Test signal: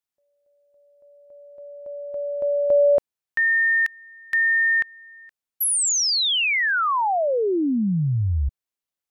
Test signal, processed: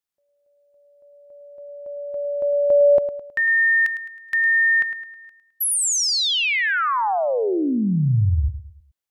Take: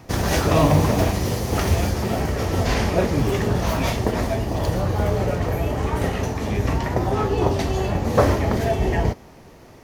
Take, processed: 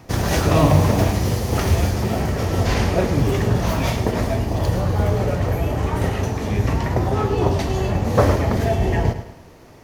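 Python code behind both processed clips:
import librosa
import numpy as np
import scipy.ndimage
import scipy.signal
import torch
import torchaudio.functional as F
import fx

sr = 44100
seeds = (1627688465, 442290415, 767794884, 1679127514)

p1 = x + fx.echo_feedback(x, sr, ms=106, feedback_pct=43, wet_db=-11.5, dry=0)
y = fx.dynamic_eq(p1, sr, hz=110.0, q=1.4, threshold_db=-30.0, ratio=5.0, max_db=4)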